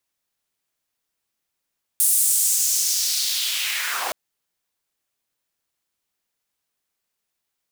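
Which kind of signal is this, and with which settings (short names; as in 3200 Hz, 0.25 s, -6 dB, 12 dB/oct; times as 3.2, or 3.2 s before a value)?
swept filtered noise pink, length 2.12 s highpass, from 9700 Hz, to 550 Hz, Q 2.2, linear, gain ramp -13 dB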